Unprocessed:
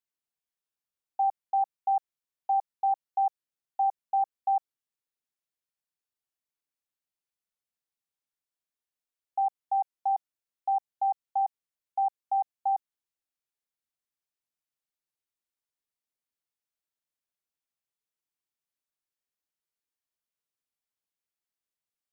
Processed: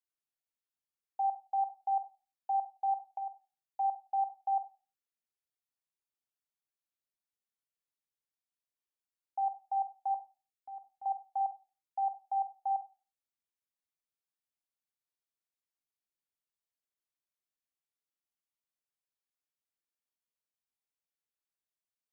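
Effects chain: 3.07–3.8 compressor 10:1, threshold -31 dBFS, peak gain reduction 8.5 dB; 10.14–11.06 bell 790 Hz -13.5 dB 1.4 oct; reverb RT60 0.30 s, pre-delay 37 ms, DRR 13 dB; gain -6.5 dB

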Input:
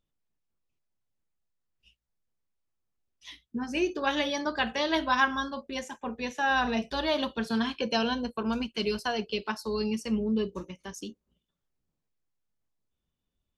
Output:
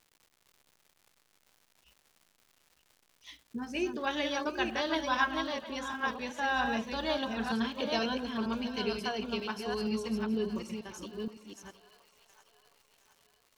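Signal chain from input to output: reverse delay 0.47 s, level -4 dB; crackle 250/s -45 dBFS; split-band echo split 600 Hz, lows 92 ms, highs 0.717 s, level -15 dB; gain -5 dB

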